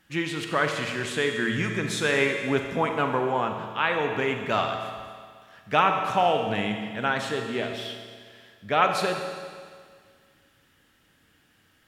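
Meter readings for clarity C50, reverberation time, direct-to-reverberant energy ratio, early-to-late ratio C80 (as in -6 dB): 4.5 dB, 1.9 s, 4.0 dB, 5.5 dB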